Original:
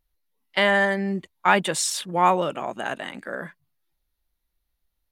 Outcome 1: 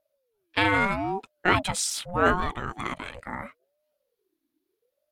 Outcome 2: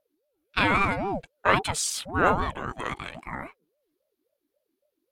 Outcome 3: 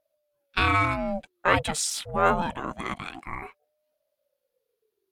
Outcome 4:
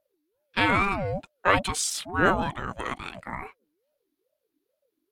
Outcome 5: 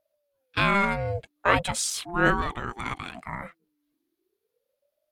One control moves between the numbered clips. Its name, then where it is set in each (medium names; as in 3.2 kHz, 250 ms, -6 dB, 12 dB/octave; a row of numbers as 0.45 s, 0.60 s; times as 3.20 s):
ring modulator with a swept carrier, at: 0.78 Hz, 3.7 Hz, 0.26 Hz, 2.3 Hz, 0.39 Hz